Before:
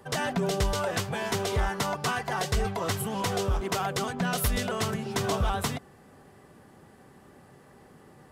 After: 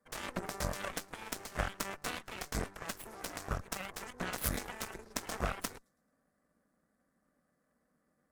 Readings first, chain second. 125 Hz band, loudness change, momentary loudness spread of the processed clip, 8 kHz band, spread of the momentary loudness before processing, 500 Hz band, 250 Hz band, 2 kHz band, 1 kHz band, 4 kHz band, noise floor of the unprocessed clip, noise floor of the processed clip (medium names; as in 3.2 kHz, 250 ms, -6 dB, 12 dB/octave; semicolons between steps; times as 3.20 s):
-13.5 dB, -10.5 dB, 7 LU, -7.0 dB, 3 LU, -13.5 dB, -12.0 dB, -8.5 dB, -12.0 dB, -10.5 dB, -55 dBFS, -79 dBFS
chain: static phaser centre 580 Hz, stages 8; feedback echo behind a high-pass 109 ms, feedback 44%, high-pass 2.7 kHz, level -19 dB; Chebyshev shaper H 3 -9 dB, 6 -25 dB, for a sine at -17.5 dBFS; trim +3.5 dB